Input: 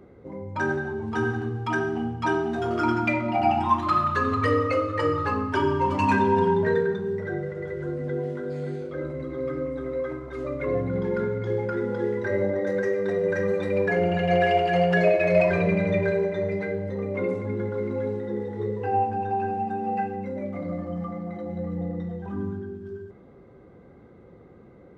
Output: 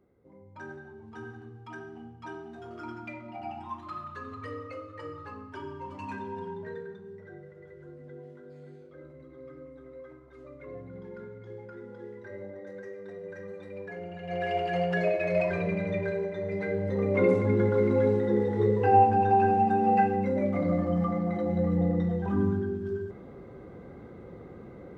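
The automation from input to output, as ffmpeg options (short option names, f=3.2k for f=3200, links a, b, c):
-af "volume=4.5dB,afade=t=in:st=14.21:d=0.41:silence=0.316228,afade=t=in:st=16.43:d=0.86:silence=0.266073"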